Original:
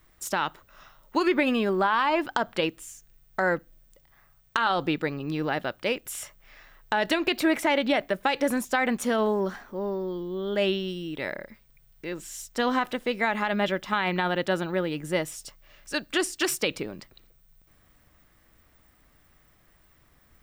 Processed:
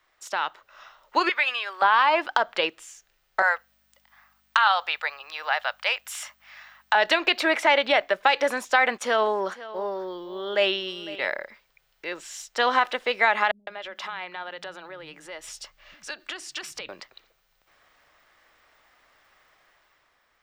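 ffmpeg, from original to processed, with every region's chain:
-filter_complex "[0:a]asettb=1/sr,asplit=3[a][b][c];[a]atrim=end=1.294[d];[b]atrim=start=1.29:end=1.82,asetpts=PTS-STARTPTS,afade=t=in:d=0.004:c=qsin,afade=t=out:st=0.526:d=0.004:c=qsin,highpass=1.3k,bandreject=f=7.3k:w=25[e];[c]atrim=start=1.816[f];[d][e]acrossfade=d=0.004:c1=hsin:c2=qsin[g];[g][f]acrossfade=d=0.004:c1=qsin:c2=hsin,asettb=1/sr,asplit=3[h][i][j];[h]atrim=end=3.424[k];[i]atrim=start=3.42:end=6.95,asetpts=PTS-STARTPTS,afade=t=in:d=0.004:c=qsin,afade=t=out:st=3.526:d=0.004:c=qsin,highpass=f=710:w=0.5412,highpass=f=710:w=1.3066,highshelf=f=11k:g=7.5,aeval=exprs='val(0)+0.00141*(sin(2*PI*50*n/s)+sin(2*PI*2*50*n/s)/2+sin(2*PI*3*50*n/s)/3+sin(2*PI*4*50*n/s)/4+sin(2*PI*5*50*n/s)/5)':c=same[l];[j]atrim=start=6.946[m];[k][l]acrossfade=d=0.004:c1=hsin:c2=qsin[n];[n][m]acrossfade=d=0.004:c1=qsin:c2=hsin,asettb=1/sr,asplit=3[o][p][q];[o]atrim=end=8.984[r];[p]atrim=start=8.98:end=11.27,asetpts=PTS-STARTPTS,afade=t=in:d=0.004:c=qsin,afade=t=out:st=2.286:d=0.004:c=qsin,agate=range=-20dB:threshold=-38dB:ratio=16:release=100:detection=peak,aecho=1:1:504:0.141,atrim=end_sample=100989[s];[q]atrim=start=11.266[t];[r][s]acrossfade=d=0.004:c1=hsin:c2=qsin[u];[u][t]acrossfade=d=0.004:c1=qsin:c2=hsin,asettb=1/sr,asplit=3[v][w][x];[v]atrim=end=13.514[y];[w]atrim=start=13.51:end=16.89,asetpts=PTS-STARTPTS,afade=t=in:d=0.004:c=qsin,afade=t=out:st=3.376:d=0.004:c=qsin,asubboost=boost=3.5:cutoff=240,acompressor=threshold=-34dB:ratio=16:attack=3.2:release=140:knee=1:detection=peak,acrossover=split=210[z][aa];[aa]adelay=160[ab];[z][ab]amix=inputs=2:normalize=0,atrim=end_sample=149058[ac];[x]atrim=start=16.886[ad];[y][ac]acrossfade=d=0.004:c1=hsin:c2=qsin[ae];[ae][ad]acrossfade=d=0.004:c1=qsin:c2=hsin,acrossover=split=480 6400:gain=0.0794 1 0.158[af][ag][ah];[af][ag][ah]amix=inputs=3:normalize=0,dynaudnorm=f=110:g=13:m=6.5dB"

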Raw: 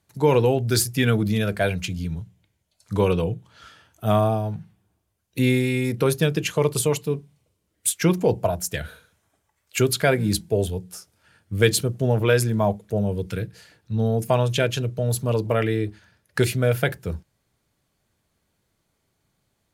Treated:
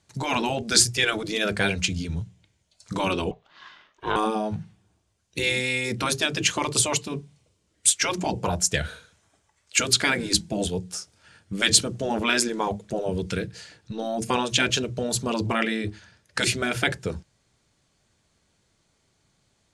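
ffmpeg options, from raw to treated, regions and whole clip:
-filter_complex "[0:a]asettb=1/sr,asplit=3[a][b][c];[a]atrim=end=3.314[d];[b]atrim=start=3.31:end=4.16,asetpts=PTS-STARTPTS,afade=t=in:d=0.004:c=qsin,afade=t=out:st=0.846:d=0.004:c=qsin,lowpass=8.2k,acrossover=split=350 4300:gain=0.0794 1 0.0891[e][f][g];[e][f][g]amix=inputs=3:normalize=0,aeval=exprs='val(0)*sin(2*PI*290*n/s)':c=same[h];[c]atrim=start=4.156[i];[d][h]acrossfade=d=0.004:c1=hsin:c2=qsin[j];[j][i]acrossfade=d=0.004:c1=qsin:c2=hsin,lowpass=f=8.1k:w=0.5412,lowpass=f=8.1k:w=1.3066,afftfilt=real='re*lt(hypot(re,im),0.398)':imag='im*lt(hypot(re,im),0.398)':win_size=1024:overlap=0.75,highshelf=f=3.9k:g=7.5,volume=3dB"

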